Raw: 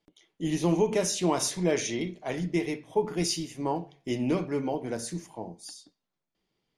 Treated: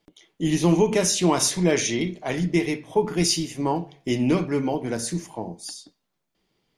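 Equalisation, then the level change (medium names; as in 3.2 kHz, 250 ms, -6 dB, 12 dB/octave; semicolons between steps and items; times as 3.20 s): dynamic bell 580 Hz, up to -4 dB, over -38 dBFS, Q 1; +7.5 dB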